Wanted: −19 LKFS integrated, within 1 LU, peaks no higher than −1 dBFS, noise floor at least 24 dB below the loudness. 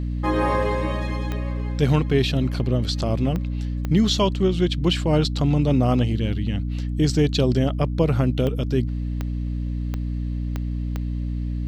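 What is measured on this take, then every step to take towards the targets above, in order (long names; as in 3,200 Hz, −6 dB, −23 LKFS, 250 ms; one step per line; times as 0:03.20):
number of clicks 8; mains hum 60 Hz; hum harmonics up to 300 Hz; level of the hum −23 dBFS; integrated loudness −23.0 LKFS; sample peak −7.0 dBFS; target loudness −19.0 LKFS
→ click removal
mains-hum notches 60/120/180/240/300 Hz
level +4 dB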